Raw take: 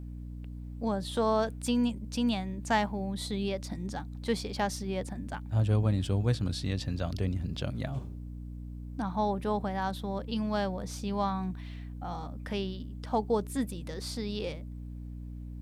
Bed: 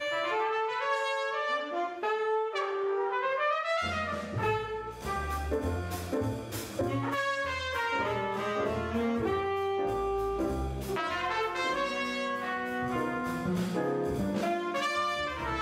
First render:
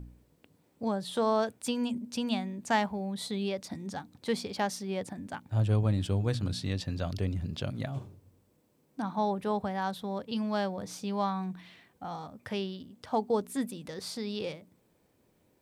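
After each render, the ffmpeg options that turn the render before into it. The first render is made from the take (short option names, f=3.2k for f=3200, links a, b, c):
-af "bandreject=f=60:t=h:w=4,bandreject=f=120:t=h:w=4,bandreject=f=180:t=h:w=4,bandreject=f=240:t=h:w=4,bandreject=f=300:t=h:w=4"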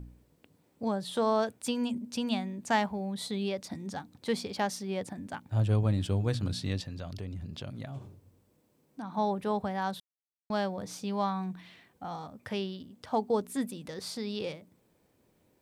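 -filter_complex "[0:a]asettb=1/sr,asplit=3[a][b][c];[a]atrim=end=6.814[d];[b]atrim=start=6.81:end=9.14,asetpts=PTS-STARTPTS,afade=t=in:d=0.004:c=qsin,afade=t=out:st=2.326:d=0.004:c=qsin,acompressor=threshold=-40dB:ratio=2:attack=3.2:release=140:knee=1:detection=peak[e];[c]atrim=start=9.136[f];[d][e]acrossfade=d=0.004:c1=hsin:c2=qsin[g];[g][f]acrossfade=d=0.004:c1=qsin:c2=hsin,asplit=3[h][i][j];[h]atrim=end=10,asetpts=PTS-STARTPTS,afade=t=out:st=9.996:d=0.004:c=hsin[k];[i]atrim=start=10:end=10.5,asetpts=PTS-STARTPTS,volume=0[l];[j]atrim=start=10.5,asetpts=PTS-STARTPTS,afade=t=in:d=0.004:c=hsin[m];[k][l][m]concat=n=3:v=0:a=1"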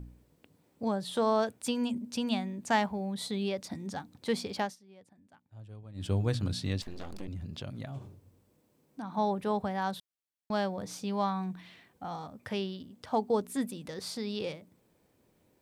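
-filter_complex "[0:a]asettb=1/sr,asplit=3[a][b][c];[a]atrim=end=6.824[d];[b]atrim=start=6.82:end=7.28,asetpts=PTS-STARTPTS,afade=t=in:d=0.004:c=qsin,afade=t=out:st=0.456:d=0.004:c=qsin,aeval=exprs='abs(val(0))':c=same[e];[c]atrim=start=7.276[f];[d][e]acrossfade=d=0.004:c1=hsin:c2=qsin[g];[g][f]acrossfade=d=0.004:c1=qsin:c2=hsin,asplit=3[h][i][j];[h]atrim=end=4.76,asetpts=PTS-STARTPTS,afade=t=out:st=4.59:d=0.17:silence=0.0841395[k];[i]atrim=start=4.76:end=5.94,asetpts=PTS-STARTPTS,volume=-21.5dB[l];[j]atrim=start=5.94,asetpts=PTS-STARTPTS,afade=t=in:d=0.17:silence=0.0841395[m];[k][l][m]concat=n=3:v=0:a=1"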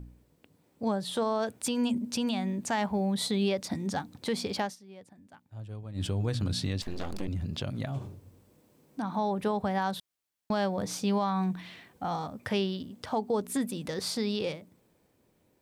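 -af "dynaudnorm=f=110:g=21:m=6.5dB,alimiter=limit=-20.5dB:level=0:latency=1:release=168"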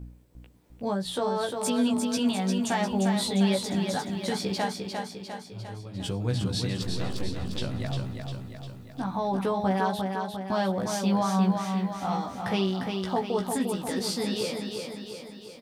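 -filter_complex "[0:a]asplit=2[a][b];[b]adelay=16,volume=-3dB[c];[a][c]amix=inputs=2:normalize=0,aecho=1:1:351|702|1053|1404|1755|2106|2457:0.562|0.315|0.176|0.0988|0.0553|0.031|0.0173"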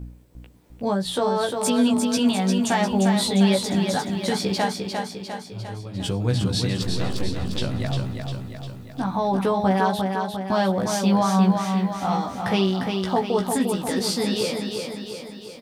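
-af "volume=5.5dB"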